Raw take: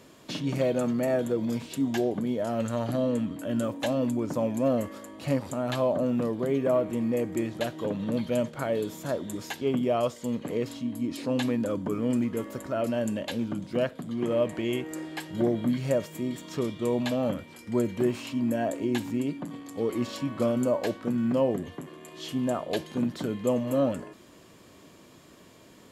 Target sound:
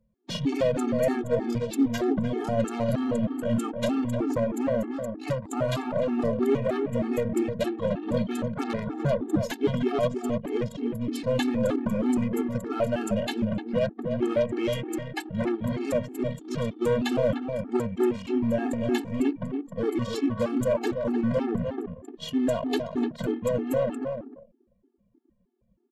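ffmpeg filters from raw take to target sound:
ffmpeg -i in.wav -filter_complex "[0:a]acrusher=bits=9:mix=0:aa=0.000001,asettb=1/sr,asplit=3[link_01][link_02][link_03];[link_01]atrim=end=8.574[link_04];[link_02]atrim=start=8.57:end=9.43,asetpts=PTS-STARTPTS,afade=type=in:duration=0.004:curve=qsin,afade=type=out:start_time=0.856:duration=0.004:curve=qsin,tiltshelf=frequency=1400:gain=8[link_05];[link_03]atrim=start=9.426[link_06];[link_04][link_05]acrossfade=duration=0.004:curve1=hsin:curve2=qsin[link_07];[link_07][link_06]acrossfade=duration=0.004:curve1=qsin:curve2=hsin,aeval=exprs='0.224*(cos(1*acos(clip(val(0)/0.224,-1,1)))-cos(1*PI/2))+0.0631*(cos(4*acos(clip(val(0)/0.224,-1,1)))-cos(4*PI/2))+0.0398*(cos(6*acos(clip(val(0)/0.224,-1,1)))-cos(6*PI/2))+0.00251*(cos(7*acos(clip(val(0)/0.224,-1,1)))-cos(7*PI/2))':channel_layout=same,alimiter=limit=-19dB:level=0:latency=1:release=207,asplit=2[link_08][link_09];[link_09]adelay=300,lowpass=frequency=1500:poles=1,volume=-5.5dB,asplit=2[link_10][link_11];[link_11]adelay=300,lowpass=frequency=1500:poles=1,volume=0.22,asplit=2[link_12][link_13];[link_13]adelay=300,lowpass=frequency=1500:poles=1,volume=0.22[link_14];[link_08][link_10][link_12][link_14]amix=inputs=4:normalize=0,aresample=32000,aresample=44100,asettb=1/sr,asplit=3[link_15][link_16][link_17];[link_15]atrim=end=18.224[link_18];[link_16]atrim=start=18.22:end=18.73,asetpts=PTS-STARTPTS,afade=type=in:duration=0.004:curve=qsin,afade=type=out:start_time=0.506:duration=0.004:curve=qsin,highshelf=frequency=2400:gain=-5.5[link_19];[link_17]atrim=start=18.726[link_20];[link_18][link_19]acrossfade=duration=0.004:curve1=hsin:curve2=qsin[link_21];[link_21][link_20]acrossfade=duration=0.004:curve1=qsin:curve2=hsin,anlmdn=0.631,afftfilt=real='re*gt(sin(2*PI*3.2*pts/sr)*(1-2*mod(floor(b*sr/1024/230),2)),0)':imag='im*gt(sin(2*PI*3.2*pts/sr)*(1-2*mod(floor(b*sr/1024/230),2)),0)':win_size=1024:overlap=0.75,volume=6dB" out.wav

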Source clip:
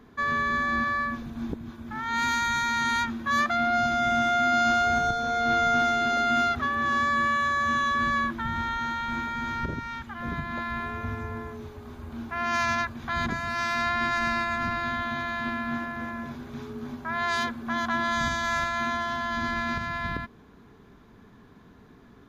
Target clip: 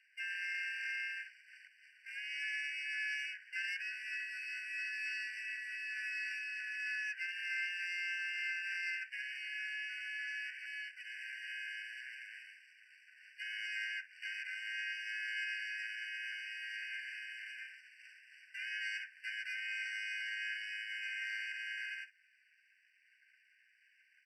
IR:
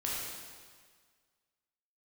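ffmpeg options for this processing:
-filter_complex "[0:a]aemphasis=mode=reproduction:type=75fm,asetrate=40517,aresample=44100,asplit=2[link_01][link_02];[link_02]aecho=0:1:11|58:0.2|0.158[link_03];[link_01][link_03]amix=inputs=2:normalize=0,aeval=exprs='max(val(0),0)':channel_layout=same,highpass=frequency=430:width=0.5412,highpass=frequency=430:width=1.3066,equalizer=frequency=540:width_type=q:width=4:gain=6,equalizer=frequency=1200:width_type=q:width=4:gain=-6,equalizer=frequency=2600:width_type=q:width=4:gain=6,equalizer=frequency=4000:width_type=q:width=4:gain=-6,equalizer=frequency=6800:width_type=q:width=4:gain=4,lowpass=frequency=9600:width=0.5412,lowpass=frequency=9600:width=1.3066,asplit=4[link_04][link_05][link_06][link_07];[link_05]asetrate=29433,aresample=44100,atempo=1.49831,volume=-5dB[link_08];[link_06]asetrate=58866,aresample=44100,atempo=0.749154,volume=0dB[link_09];[link_07]asetrate=66075,aresample=44100,atempo=0.66742,volume=-18dB[link_10];[link_04][link_08][link_09][link_10]amix=inputs=4:normalize=0,acrossover=split=2300[link_11][link_12];[link_11]asoftclip=type=tanh:threshold=-29.5dB[link_13];[link_12]acompressor=threshold=-46dB:ratio=6[link_14];[link_13][link_14]amix=inputs=2:normalize=0,afftfilt=real='re*eq(mod(floor(b*sr/1024/1500),2),1)':imag='im*eq(mod(floor(b*sr/1024/1500),2),1)':win_size=1024:overlap=0.75,volume=-1.5dB"

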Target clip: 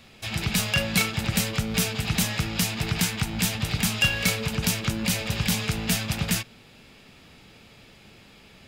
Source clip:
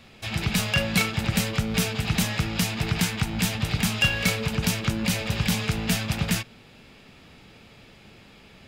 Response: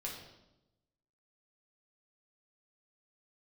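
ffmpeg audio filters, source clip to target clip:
-af "highshelf=frequency=4400:gain=5.5,volume=-1.5dB"

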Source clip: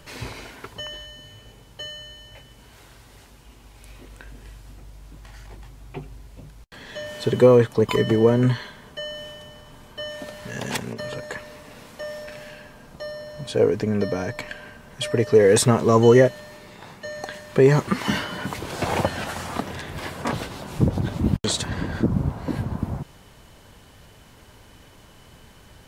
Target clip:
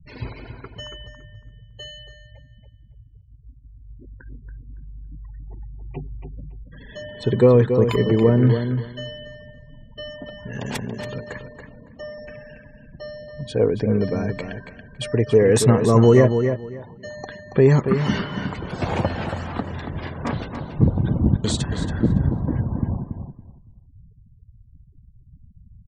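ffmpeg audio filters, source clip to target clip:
ffmpeg -i in.wav -filter_complex "[0:a]afftfilt=real='re*gte(hypot(re,im),0.0178)':imag='im*gte(hypot(re,im),0.0178)':win_size=1024:overlap=0.75,lowshelf=frequency=290:gain=8,asplit=2[link_01][link_02];[link_02]adelay=280,lowpass=frequency=4500:poles=1,volume=-7.5dB,asplit=2[link_03][link_04];[link_04]adelay=280,lowpass=frequency=4500:poles=1,volume=0.2,asplit=2[link_05][link_06];[link_06]adelay=280,lowpass=frequency=4500:poles=1,volume=0.2[link_07];[link_03][link_05][link_07]amix=inputs=3:normalize=0[link_08];[link_01][link_08]amix=inputs=2:normalize=0,volume=-3dB" out.wav

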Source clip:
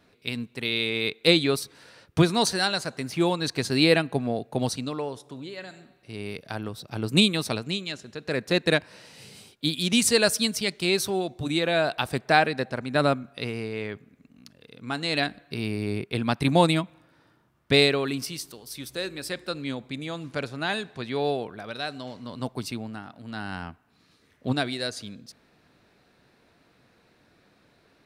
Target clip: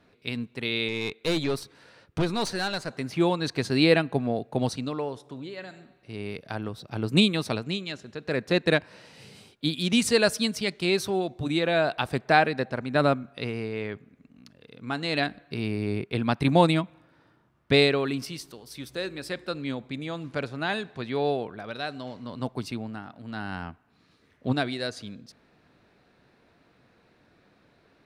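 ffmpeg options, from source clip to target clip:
ffmpeg -i in.wav -filter_complex "[0:a]asettb=1/sr,asplit=3[link_01][link_02][link_03];[link_01]atrim=end=0.884[link_04];[link_02]atrim=start=0.88:end=2.9,asetpts=PTS-STARTPTS,afade=type=in:duration=0.004:curve=qsin,afade=type=out:start_time=2.016:duration=0.004:curve=qsin,aeval=exprs='(tanh(11.2*val(0)+0.45)-tanh(0.45))/11.2':channel_layout=same[link_05];[link_03]atrim=start=2.896[link_06];[link_04][link_05]acrossfade=duration=0.004:curve1=hsin:curve2=qsin[link_07];[link_07][link_06]acrossfade=duration=0.004:curve1=qsin:curve2=hsin,aemphasis=mode=reproduction:type=cd" out.wav

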